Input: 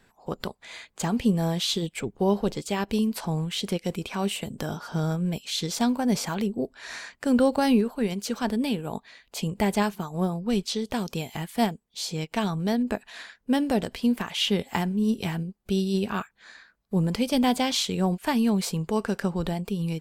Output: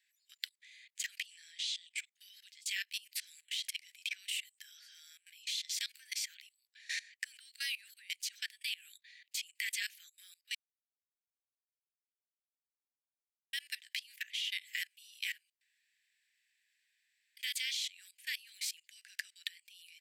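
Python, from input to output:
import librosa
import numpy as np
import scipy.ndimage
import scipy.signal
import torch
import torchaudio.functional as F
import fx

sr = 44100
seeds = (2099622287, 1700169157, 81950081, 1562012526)

y = fx.lowpass(x, sr, hz=8700.0, slope=24, at=(1.26, 1.98))
y = fx.edit(y, sr, fx.silence(start_s=10.55, length_s=2.98),
    fx.room_tone_fill(start_s=15.61, length_s=1.76), tone=tone)
y = scipy.signal.sosfilt(scipy.signal.butter(12, 1800.0, 'highpass', fs=sr, output='sos'), y)
y = fx.peak_eq(y, sr, hz=11000.0, db=-3.0, octaves=2.9)
y = fx.level_steps(y, sr, step_db=21)
y = y * librosa.db_to_amplitude(5.0)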